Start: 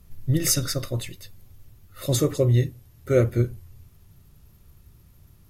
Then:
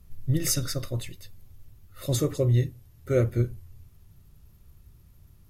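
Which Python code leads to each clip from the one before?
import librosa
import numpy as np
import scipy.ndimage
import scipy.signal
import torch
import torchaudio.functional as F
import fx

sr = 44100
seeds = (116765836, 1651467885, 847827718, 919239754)

y = fx.low_shelf(x, sr, hz=95.0, db=5.5)
y = y * librosa.db_to_amplitude(-4.5)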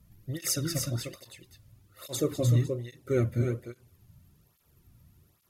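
y = x + 10.0 ** (-5.0 / 20.0) * np.pad(x, (int(302 * sr / 1000.0), 0))[:len(x)]
y = fx.flanger_cancel(y, sr, hz=1.2, depth_ms=2.8)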